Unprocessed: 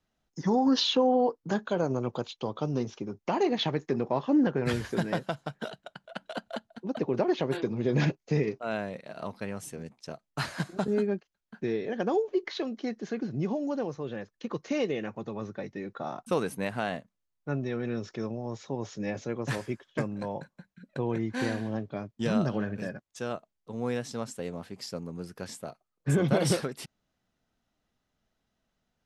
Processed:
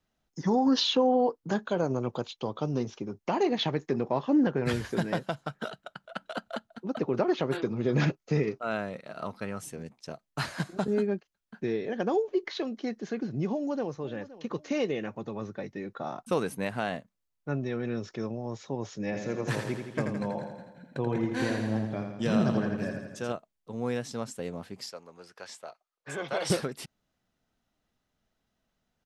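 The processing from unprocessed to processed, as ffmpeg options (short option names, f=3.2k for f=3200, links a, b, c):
-filter_complex "[0:a]asettb=1/sr,asplit=3[a][b][c];[a]atrim=end=5.424[d];[b]atrim=start=5.42:end=9.63,asetpts=PTS-STARTPTS,afade=t=in:d=0.004:c=qsin,afade=t=out:st=4.206:d=0.004:c=qsin,equalizer=f=1.3k:t=o:w=0.22:g=8.5[e];[c]atrim=start=9.626[f];[d][e]acrossfade=d=0.004:c1=hsin:c2=qsin[g];[g][f]acrossfade=d=0.004:c1=qsin:c2=hsin,asplit=2[h][i];[i]afade=t=in:st=13.51:d=0.01,afade=t=out:st=14.07:d=0.01,aecho=0:1:520|1040|1560:0.141254|0.0494388|0.0173036[j];[h][j]amix=inputs=2:normalize=0,asettb=1/sr,asplit=3[k][l][m];[k]atrim=end=19.044[n];[l]atrim=start=19.04:end=23.32,asetpts=PTS-STARTPTS,afade=t=in:d=0.004:c=qsin,afade=t=out:st=4.276:d=0.004:c=qsin,aecho=1:1:83|166|249|332|415|498|581|664:0.501|0.301|0.18|0.108|0.065|0.039|0.0234|0.014,atrim=end_sample=188748[o];[m]atrim=start=23.316[p];[n][o]acrossfade=d=0.004:c1=hsin:c2=qsin[q];[q][p]acrossfade=d=0.004:c1=qsin:c2=hsin,asettb=1/sr,asplit=3[r][s][t];[r]atrim=end=24.904[u];[s]atrim=start=24.9:end=26.5,asetpts=PTS-STARTPTS,afade=t=in:d=0.004:c=qsin,afade=t=out:st=1.596:d=0.004:c=qsin,acrossover=split=510 7600:gain=0.0891 1 0.2[v][w][x];[v][w][x]amix=inputs=3:normalize=0[y];[t]atrim=start=26.496[z];[u][y]acrossfade=d=0.004:c1=hsin:c2=qsin[aa];[aa][z]acrossfade=d=0.004:c1=qsin:c2=hsin"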